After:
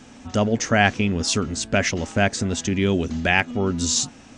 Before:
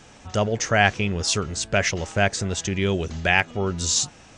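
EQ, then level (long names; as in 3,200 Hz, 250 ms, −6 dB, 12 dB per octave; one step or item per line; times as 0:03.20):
parametric band 250 Hz +14.5 dB 0.4 octaves
0.0 dB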